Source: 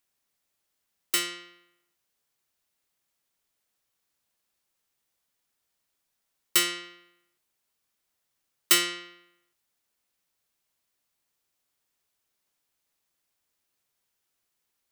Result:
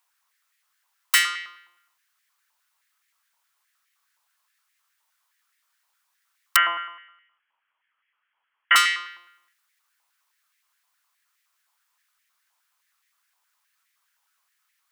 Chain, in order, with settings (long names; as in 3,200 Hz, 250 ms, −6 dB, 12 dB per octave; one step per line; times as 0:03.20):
0:06.56–0:08.76: voice inversion scrambler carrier 3,300 Hz
high-pass on a step sequencer 9.6 Hz 940–1,900 Hz
level +5 dB